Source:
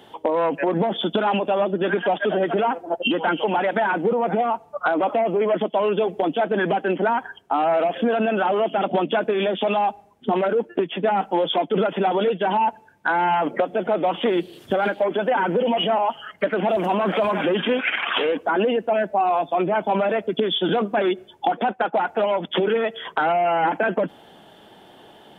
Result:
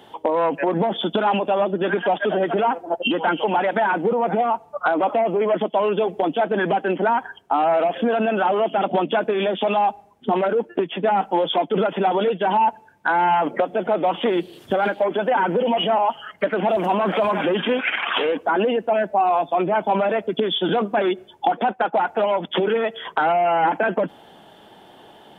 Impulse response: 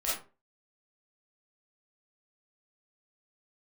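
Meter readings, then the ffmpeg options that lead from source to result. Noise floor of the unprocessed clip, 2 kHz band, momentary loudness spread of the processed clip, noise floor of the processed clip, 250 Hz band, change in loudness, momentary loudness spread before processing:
-50 dBFS, +0.5 dB, 4 LU, -49 dBFS, 0.0 dB, +1.0 dB, 3 LU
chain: -af "equalizer=f=900:t=o:w=0.77:g=2.5"

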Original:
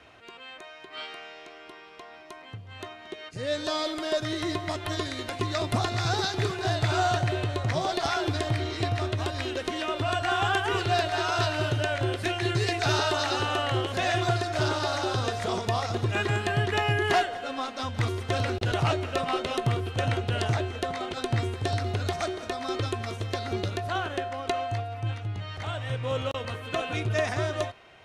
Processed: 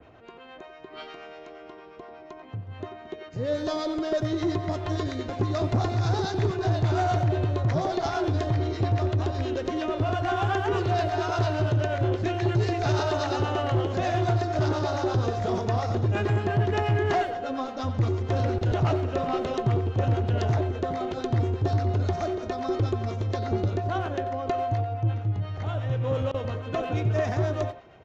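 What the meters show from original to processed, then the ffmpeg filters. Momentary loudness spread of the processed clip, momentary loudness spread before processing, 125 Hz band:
13 LU, 14 LU, +4.5 dB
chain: -filter_complex "[0:a]adynamicequalizer=threshold=0.00316:dfrequency=6100:dqfactor=0.99:tfrequency=6100:tqfactor=0.99:attack=5:release=100:ratio=0.375:range=3:mode=boostabove:tftype=bell,acrossover=split=620[s0][s1];[s0]aeval=exprs='val(0)*(1-0.5/2+0.5/2*cos(2*PI*8.5*n/s))':c=same[s2];[s1]aeval=exprs='val(0)*(1-0.5/2-0.5/2*cos(2*PI*8.5*n/s))':c=same[s3];[s2][s3]amix=inputs=2:normalize=0,tiltshelf=f=1200:g=9,aresample=16000,asoftclip=type=tanh:threshold=0.133,aresample=44100,asplit=2[s4][s5];[s5]adelay=90,highpass=300,lowpass=3400,asoftclip=type=hard:threshold=0.0473,volume=0.316[s6];[s4][s6]amix=inputs=2:normalize=0"

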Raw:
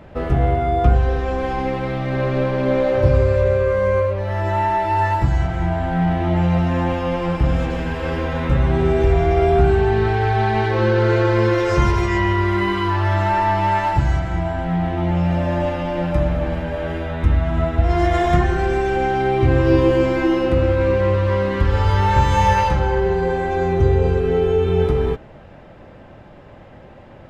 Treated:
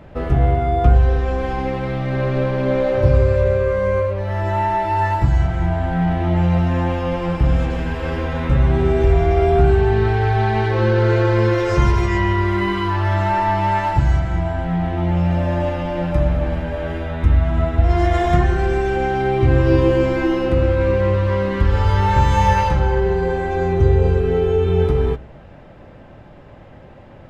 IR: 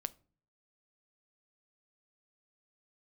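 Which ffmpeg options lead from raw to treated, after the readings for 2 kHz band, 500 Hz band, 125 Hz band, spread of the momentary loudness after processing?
-0.5 dB, -0.5 dB, +1.5 dB, 7 LU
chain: -filter_complex "[0:a]asplit=2[s0][s1];[1:a]atrim=start_sample=2205,lowshelf=f=200:g=5.5[s2];[s1][s2]afir=irnorm=-1:irlink=0,volume=1.06[s3];[s0][s3]amix=inputs=2:normalize=0,volume=0.473"

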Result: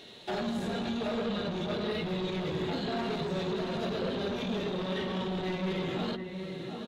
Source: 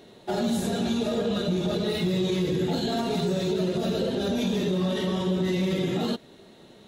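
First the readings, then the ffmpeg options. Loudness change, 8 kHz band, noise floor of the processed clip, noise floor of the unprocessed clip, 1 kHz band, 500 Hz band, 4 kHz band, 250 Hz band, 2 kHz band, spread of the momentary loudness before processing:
-6.5 dB, -13.5 dB, -41 dBFS, -52 dBFS, -2.5 dB, -6.0 dB, -5.5 dB, -7.5 dB, -1.5 dB, 1 LU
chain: -filter_complex "[0:a]acrossover=split=2000[s0][s1];[s0]aecho=1:1:722:0.376[s2];[s1]acompressor=threshold=0.00282:ratio=6[s3];[s2][s3]amix=inputs=2:normalize=0,asoftclip=type=tanh:threshold=0.0596,equalizer=f=3300:w=0.63:g=12,bandreject=f=60:t=h:w=6,bandreject=f=120:t=h:w=6,bandreject=f=180:t=h:w=6,bandreject=f=240:t=h:w=6,bandreject=f=300:t=h:w=6,bandreject=f=360:t=h:w=6,volume=0.668"

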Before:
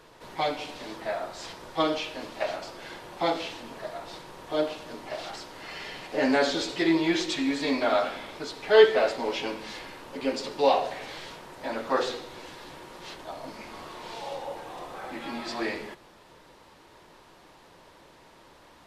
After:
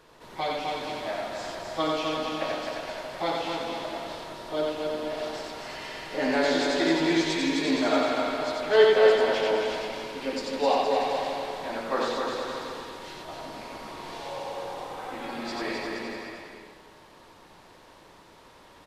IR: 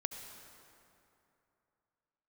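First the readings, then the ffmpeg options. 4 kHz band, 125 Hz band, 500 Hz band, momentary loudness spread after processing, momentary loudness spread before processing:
+1.5 dB, +2.0 dB, +1.5 dB, 15 LU, 18 LU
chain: -filter_complex "[0:a]aecho=1:1:260|468|634.4|767.5|874:0.631|0.398|0.251|0.158|0.1,asplit=2[s0][s1];[1:a]atrim=start_sample=2205,afade=t=out:st=0.4:d=0.01,atrim=end_sample=18081,adelay=90[s2];[s1][s2]afir=irnorm=-1:irlink=0,volume=0.841[s3];[s0][s3]amix=inputs=2:normalize=0,volume=0.708"

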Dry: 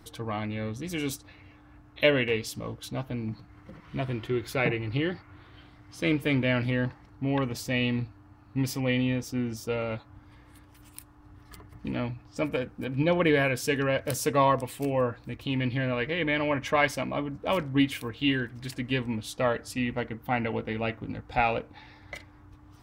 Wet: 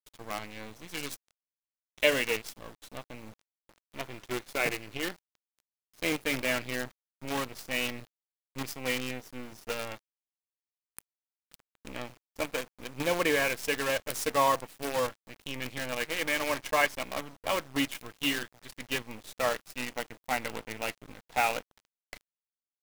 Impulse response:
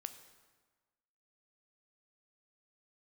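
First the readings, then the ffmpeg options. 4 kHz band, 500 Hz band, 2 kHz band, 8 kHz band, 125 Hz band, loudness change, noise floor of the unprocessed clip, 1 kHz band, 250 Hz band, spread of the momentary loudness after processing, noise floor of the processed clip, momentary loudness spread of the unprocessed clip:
+0.5 dB, -4.5 dB, -1.0 dB, +2.5 dB, -15.0 dB, -3.0 dB, -54 dBFS, -2.0 dB, -9.5 dB, 18 LU, under -85 dBFS, 12 LU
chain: -af "aeval=exprs='sgn(val(0))*max(abs(val(0))-0.00668,0)':c=same,highpass=f=540:p=1,acrusher=bits=6:dc=4:mix=0:aa=0.000001"

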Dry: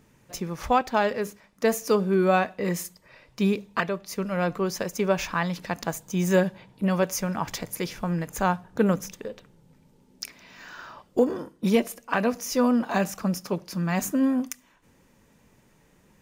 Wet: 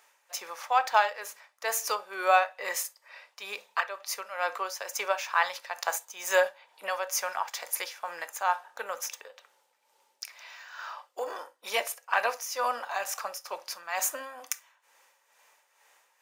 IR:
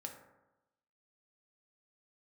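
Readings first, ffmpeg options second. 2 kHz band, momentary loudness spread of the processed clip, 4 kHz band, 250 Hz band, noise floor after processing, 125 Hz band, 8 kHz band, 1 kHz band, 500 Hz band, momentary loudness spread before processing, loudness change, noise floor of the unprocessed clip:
+1.0 dB, 15 LU, +0.5 dB, under -30 dB, -70 dBFS, under -40 dB, +1.5 dB, +0.5 dB, -8.0 dB, 15 LU, -4.5 dB, -61 dBFS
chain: -filter_complex "[0:a]highpass=f=700:w=0.5412,highpass=f=700:w=1.3066,tremolo=f=2.2:d=0.63,asplit=2[s0][s1];[1:a]atrim=start_sample=2205,atrim=end_sample=3087[s2];[s1][s2]afir=irnorm=-1:irlink=0,volume=1.12[s3];[s0][s3]amix=inputs=2:normalize=0"

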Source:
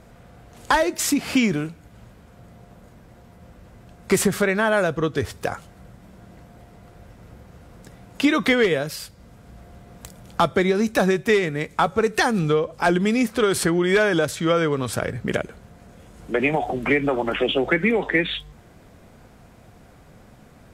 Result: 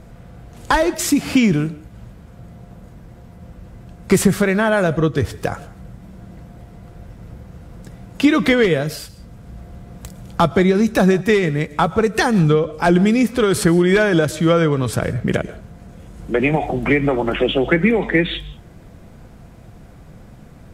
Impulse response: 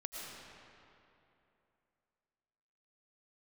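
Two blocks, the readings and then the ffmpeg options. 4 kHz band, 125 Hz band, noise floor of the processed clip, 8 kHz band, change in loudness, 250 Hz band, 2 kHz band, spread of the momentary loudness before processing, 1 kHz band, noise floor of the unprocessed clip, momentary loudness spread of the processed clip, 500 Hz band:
+1.5 dB, +8.5 dB, -42 dBFS, +1.5 dB, +4.5 dB, +6.0 dB, +2.0 dB, 10 LU, +2.5 dB, -50 dBFS, 10 LU, +3.5 dB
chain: -filter_complex "[0:a]lowshelf=f=250:g=9,asplit=2[s0][s1];[1:a]atrim=start_sample=2205,afade=t=out:st=0.24:d=0.01,atrim=end_sample=11025,adelay=6[s2];[s1][s2]afir=irnorm=-1:irlink=0,volume=0.251[s3];[s0][s3]amix=inputs=2:normalize=0,volume=1.19"

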